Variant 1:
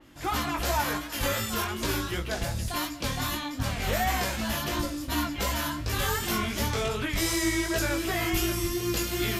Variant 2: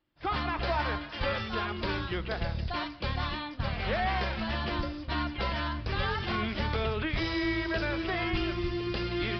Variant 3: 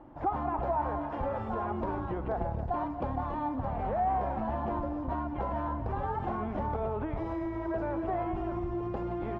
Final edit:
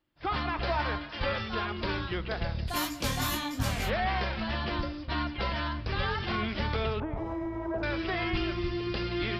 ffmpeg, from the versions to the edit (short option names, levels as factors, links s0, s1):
-filter_complex "[1:a]asplit=3[s0][s1][s2];[s0]atrim=end=2.77[s3];[0:a]atrim=start=2.67:end=3.91[s4];[s1]atrim=start=3.81:end=7.002[s5];[2:a]atrim=start=6.998:end=7.832[s6];[s2]atrim=start=7.828[s7];[s3][s4]acrossfade=d=0.1:c1=tri:c2=tri[s8];[s8][s5]acrossfade=d=0.1:c1=tri:c2=tri[s9];[s9][s6]acrossfade=d=0.004:c1=hsin:c2=hsin[s10];[s10][s7]acrossfade=d=0.004:c1=hsin:c2=hsin"